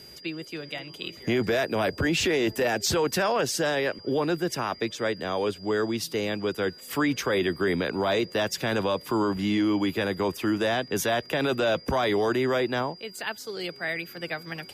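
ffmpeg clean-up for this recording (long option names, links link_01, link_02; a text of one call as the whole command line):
ffmpeg -i in.wav -af "bandreject=frequency=4800:width=30" out.wav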